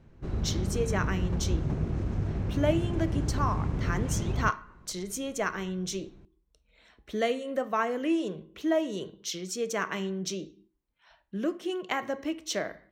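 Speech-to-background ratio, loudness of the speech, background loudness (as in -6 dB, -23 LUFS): -1.0 dB, -32.5 LUFS, -31.5 LUFS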